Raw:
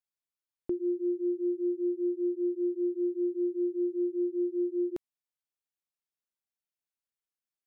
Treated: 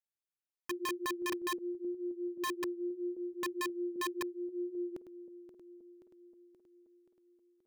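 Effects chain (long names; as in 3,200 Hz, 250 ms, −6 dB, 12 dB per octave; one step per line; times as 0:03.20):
feedback delay that plays each chunk backwards 264 ms, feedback 77%, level −11 dB
wrap-around overflow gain 24.5 dB
level −7 dB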